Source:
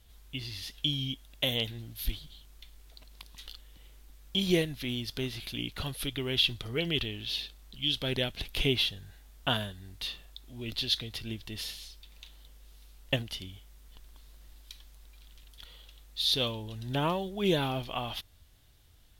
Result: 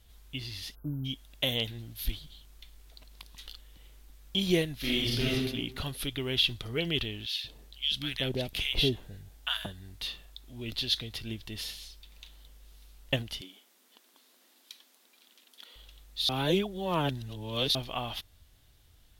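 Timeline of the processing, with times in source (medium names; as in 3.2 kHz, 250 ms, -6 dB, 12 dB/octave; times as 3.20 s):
0.75–1.05 s: spectral selection erased 1.6–11 kHz
4.79–5.33 s: reverb throw, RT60 1 s, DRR -7.5 dB
7.26–9.66 s: bands offset in time highs, lows 180 ms, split 1.1 kHz
13.41–15.76 s: brick-wall FIR high-pass 200 Hz
16.29–17.75 s: reverse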